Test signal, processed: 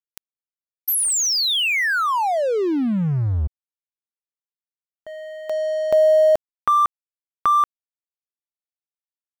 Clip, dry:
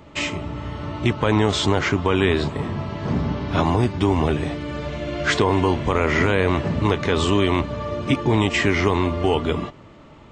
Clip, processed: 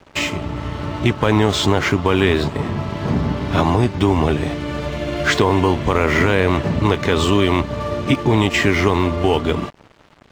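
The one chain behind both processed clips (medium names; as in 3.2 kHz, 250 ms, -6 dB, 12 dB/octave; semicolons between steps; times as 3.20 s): in parallel at -0.5 dB: compression 12:1, threshold -30 dBFS; on the sum: crossover distortion -37 dBFS; trim +2.5 dB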